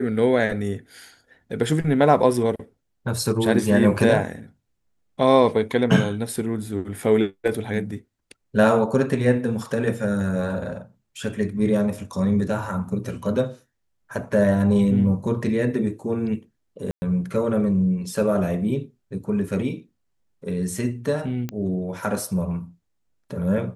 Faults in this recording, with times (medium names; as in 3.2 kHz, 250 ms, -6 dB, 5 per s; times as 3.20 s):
16.91–17.02 s: dropout 110 ms
21.49 s: pop -15 dBFS